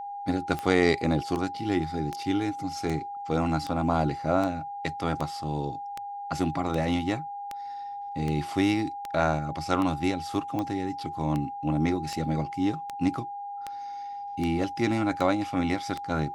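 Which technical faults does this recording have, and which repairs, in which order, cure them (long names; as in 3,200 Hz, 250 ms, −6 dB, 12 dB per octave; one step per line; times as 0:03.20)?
scratch tick 78 rpm −18 dBFS
whistle 810 Hz −34 dBFS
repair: click removal
notch filter 810 Hz, Q 30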